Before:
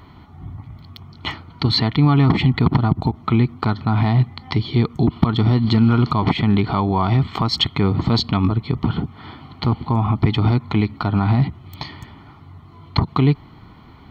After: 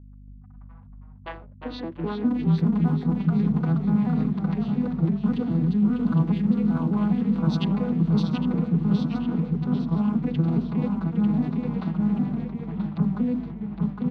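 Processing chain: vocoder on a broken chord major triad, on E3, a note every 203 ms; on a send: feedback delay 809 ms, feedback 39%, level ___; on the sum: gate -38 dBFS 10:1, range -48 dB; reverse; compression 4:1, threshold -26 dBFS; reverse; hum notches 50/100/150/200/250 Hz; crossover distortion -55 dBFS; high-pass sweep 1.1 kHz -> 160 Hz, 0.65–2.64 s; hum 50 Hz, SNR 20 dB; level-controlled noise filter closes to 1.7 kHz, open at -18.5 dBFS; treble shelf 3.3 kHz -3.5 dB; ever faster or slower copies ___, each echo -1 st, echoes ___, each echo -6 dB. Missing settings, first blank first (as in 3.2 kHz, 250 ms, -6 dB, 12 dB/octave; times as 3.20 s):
-7.5 dB, 279 ms, 2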